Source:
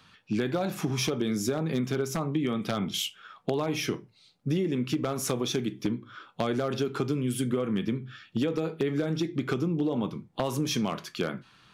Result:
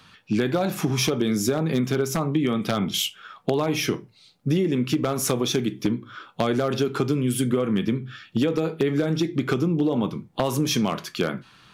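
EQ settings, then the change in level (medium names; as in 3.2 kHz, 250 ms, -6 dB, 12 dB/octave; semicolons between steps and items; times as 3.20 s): peaking EQ 14 kHz +3.5 dB 0.67 oct; +5.5 dB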